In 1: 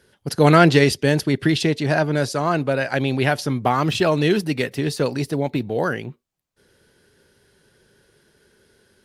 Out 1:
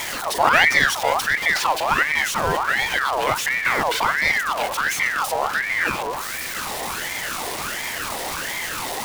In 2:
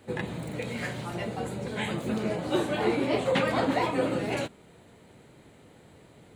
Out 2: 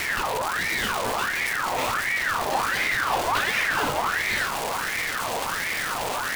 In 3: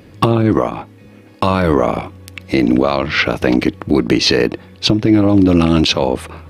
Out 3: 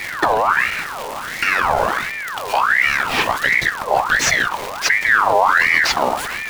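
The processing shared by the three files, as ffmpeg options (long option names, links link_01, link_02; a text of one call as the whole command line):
ffmpeg -i in.wav -af "aeval=exprs='val(0)+0.5*0.141*sgn(val(0))':channel_layout=same,afreqshift=-390,aeval=exprs='val(0)*sin(2*PI*1400*n/s+1400*0.5/1.4*sin(2*PI*1.4*n/s))':channel_layout=same,volume=-2dB" out.wav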